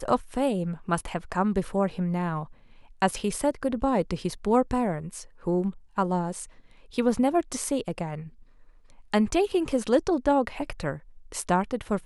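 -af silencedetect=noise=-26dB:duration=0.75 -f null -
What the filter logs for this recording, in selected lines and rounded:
silence_start: 8.15
silence_end: 9.14 | silence_duration: 0.99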